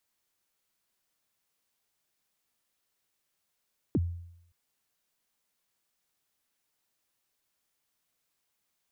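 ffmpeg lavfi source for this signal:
-f lavfi -i "aevalsrc='0.0891*pow(10,-3*t/0.76)*sin(2*PI*(390*0.039/log(86/390)*(exp(log(86/390)*min(t,0.039)/0.039)-1)+86*max(t-0.039,0)))':d=0.57:s=44100"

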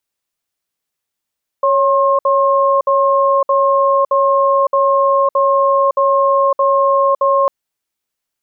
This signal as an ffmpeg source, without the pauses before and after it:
-f lavfi -i "aevalsrc='0.237*(sin(2*PI*554*t)+sin(2*PI*1070*t))*clip(min(mod(t,0.62),0.56-mod(t,0.62))/0.005,0,1)':d=5.85:s=44100"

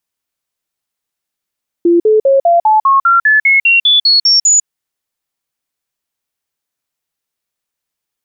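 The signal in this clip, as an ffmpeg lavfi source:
-f lavfi -i "aevalsrc='0.531*clip(min(mod(t,0.2),0.15-mod(t,0.2))/0.005,0,1)*sin(2*PI*343*pow(2,floor(t/0.2)/3)*mod(t,0.2))':d=2.8:s=44100"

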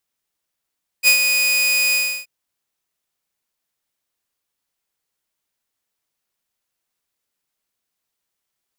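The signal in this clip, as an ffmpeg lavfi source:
-f lavfi -i "aevalsrc='0.501*(2*mod(2480*t,1)-1)':d=1.228:s=44100,afade=t=in:d=0.046,afade=t=out:st=0.046:d=0.094:silence=0.473,afade=t=out:st=0.91:d=0.318"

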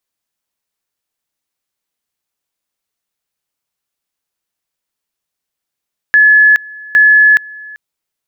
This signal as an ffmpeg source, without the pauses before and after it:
-f lavfi -i "aevalsrc='pow(10,(-3.5-24*gte(mod(t,0.81),0.42))/20)*sin(2*PI*1710*t)':d=1.62:s=44100"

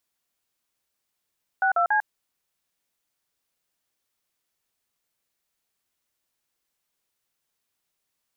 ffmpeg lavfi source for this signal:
-f lavfi -i "aevalsrc='0.0891*clip(min(mod(t,0.142),0.098-mod(t,0.142))/0.002,0,1)*(eq(floor(t/0.142),0)*(sin(2*PI*770*mod(t,0.142))+sin(2*PI*1477*mod(t,0.142)))+eq(floor(t/0.142),1)*(sin(2*PI*697*mod(t,0.142))+sin(2*PI*1336*mod(t,0.142)))+eq(floor(t/0.142),2)*(sin(2*PI*852*mod(t,0.142))+sin(2*PI*1633*mod(t,0.142))))':d=0.426:s=44100"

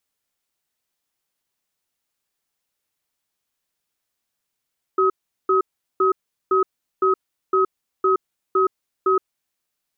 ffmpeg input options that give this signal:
-f lavfi -i "aevalsrc='0.141*(sin(2*PI*380*t)+sin(2*PI*1270*t))*clip(min(mod(t,0.51),0.12-mod(t,0.51))/0.005,0,1)':d=4.25:s=44100"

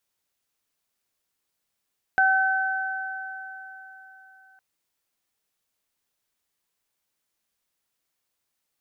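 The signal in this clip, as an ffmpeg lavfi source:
-f lavfi -i "aevalsrc='0.1*pow(10,-3*t/3.66)*sin(2*PI*764*t)+0.141*pow(10,-3*t/3.85)*sin(2*PI*1528*t)':d=2.41:s=44100"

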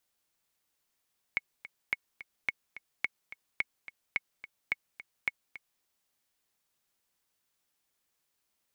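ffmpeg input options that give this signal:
-f lavfi -i "aevalsrc='pow(10,(-15-15.5*gte(mod(t,2*60/215),60/215))/20)*sin(2*PI*2200*mod(t,60/215))*exp(-6.91*mod(t,60/215)/0.03)':d=4.46:s=44100"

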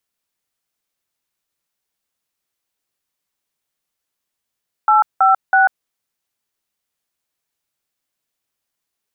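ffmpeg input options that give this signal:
-f lavfi -i "aevalsrc='0.266*clip(min(mod(t,0.325),0.143-mod(t,0.325))/0.002,0,1)*(eq(floor(t/0.325),0)*(sin(2*PI*852*mod(t,0.325))+sin(2*PI*1336*mod(t,0.325)))+eq(floor(t/0.325),1)*(sin(2*PI*770*mod(t,0.325))+sin(2*PI*1336*mod(t,0.325)))+eq(floor(t/0.325),2)*(sin(2*PI*770*mod(t,0.325))+sin(2*PI*1477*mod(t,0.325))))':d=0.975:s=44100"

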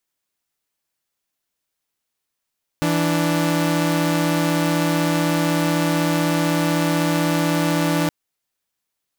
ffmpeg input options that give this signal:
-f lavfi -i "aevalsrc='0.133*((2*mod(164.81*t,1)-1)+(2*mod(293.66*t,1)-1))':d=5.27:s=44100"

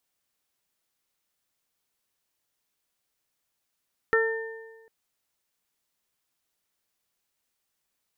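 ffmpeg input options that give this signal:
-f lavfi -i "aevalsrc='0.1*pow(10,-3*t/1.31)*sin(2*PI*450*t)+0.02*pow(10,-3*t/1.35)*sin(2*PI*900*t)+0.0708*pow(10,-3*t/0.3)*sin(2*PI*1350*t)+0.0891*pow(10,-3*t/1.1)*sin(2*PI*1800*t)':d=0.75:s=44100"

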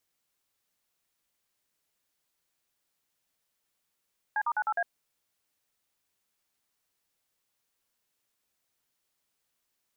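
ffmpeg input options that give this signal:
-f lavfi -i "aevalsrc='0.0398*clip(min(mod(t,0.103),0.056-mod(t,0.103))/0.002,0,1)*(eq(floor(t/0.103),0)*(sin(2*PI*852*mod(t,0.103))+sin(2*PI*1633*mod(t,0.103)))+eq(floor(t/0.103),1)*(sin(2*PI*941*mod(t,0.103))+sin(2*PI*1209*mod(t,0.103)))+eq(floor(t/0.103),2)*(sin(2*PI*852*mod(t,0.103))+sin(2*PI*1477*mod(t,0.103)))+eq(floor(t/0.103),3)*(sin(2*PI*852*mod(t,0.103))+sin(2*PI*1336*mod(t,0.103)))+eq(floor(t/0.103),4)*(sin(2*PI*697*mod(t,0.103))+sin(2*PI*1633*mod(t,0.103))))':d=0.515:s=44100"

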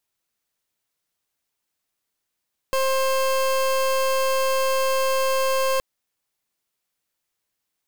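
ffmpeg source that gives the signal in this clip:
-f lavfi -i "aevalsrc='0.0891*(2*lt(mod(530*t,1),0.28)-1)':d=3.07:s=44100"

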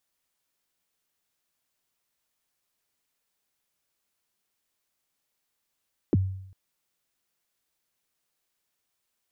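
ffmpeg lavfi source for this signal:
-f lavfi -i "aevalsrc='0.158*pow(10,-3*t/0.73)*sin(2*PI*(430*0.028/log(95/430)*(exp(log(95/430)*min(t,0.028)/0.028)-1)+95*max(t-0.028,0)))':d=0.4:s=44100"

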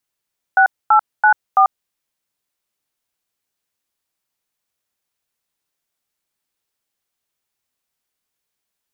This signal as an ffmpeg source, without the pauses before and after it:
-f lavfi -i "aevalsrc='0.299*clip(min(mod(t,0.333),0.091-mod(t,0.333))/0.002,0,1)*(eq(floor(t/0.333),0)*(sin(2*PI*770*mod(t,0.333))+sin(2*PI*1477*mod(t,0.333)))+eq(floor(t/0.333),1)*(sin(2*PI*852*mod(t,0.333))+sin(2*PI*1336*mod(t,0.333)))+eq(floor(t/0.333),2)*(sin(2*PI*852*mod(t,0.333))+sin(2*PI*1477*mod(t,0.333)))+eq(floor(t/0.333),3)*(sin(2*PI*770*mod(t,0.333))+sin(2*PI*1209*mod(t,0.333))))':d=1.332:s=44100"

